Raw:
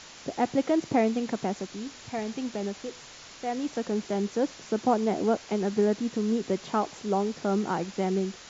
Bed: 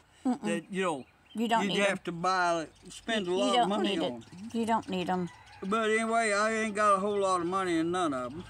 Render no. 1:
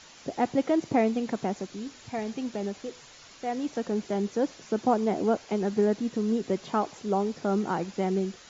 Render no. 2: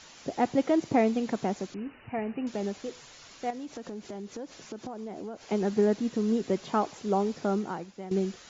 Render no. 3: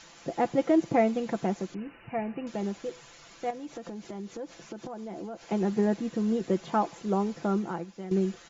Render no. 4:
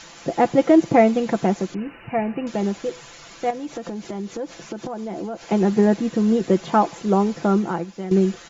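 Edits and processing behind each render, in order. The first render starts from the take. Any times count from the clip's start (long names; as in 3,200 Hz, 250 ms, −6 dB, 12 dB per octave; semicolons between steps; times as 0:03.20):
broadband denoise 6 dB, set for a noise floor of −47 dBFS
0:01.74–0:02.47: linear-phase brick-wall low-pass 3,000 Hz; 0:03.50–0:05.48: downward compressor, threshold −36 dBFS; 0:07.45–0:08.11: fade out quadratic, to −13 dB
comb filter 5.9 ms, depth 49%; dynamic equaliser 4,900 Hz, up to −5 dB, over −55 dBFS, Q 0.94
level +9 dB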